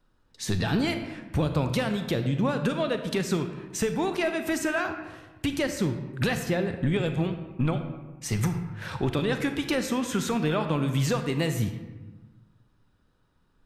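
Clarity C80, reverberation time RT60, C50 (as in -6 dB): 9.5 dB, 1.2 s, 8.5 dB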